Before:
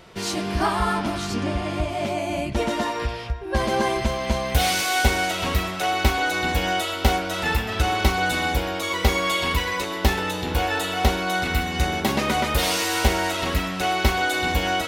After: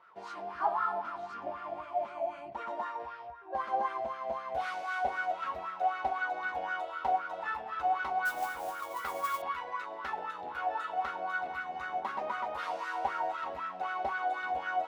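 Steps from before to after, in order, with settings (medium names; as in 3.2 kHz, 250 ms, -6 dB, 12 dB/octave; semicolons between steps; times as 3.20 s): wah-wah 3.9 Hz 680–1400 Hz, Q 6.6; 8.25–9.42 s: modulation noise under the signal 16 dB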